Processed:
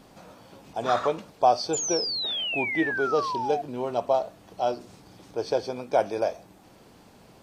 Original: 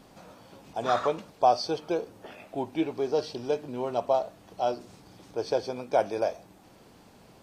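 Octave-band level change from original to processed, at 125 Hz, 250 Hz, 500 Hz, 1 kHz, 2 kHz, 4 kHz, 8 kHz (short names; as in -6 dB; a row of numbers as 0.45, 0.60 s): +1.5 dB, +1.5 dB, +1.5 dB, +2.5 dB, +11.0 dB, +10.0 dB, n/a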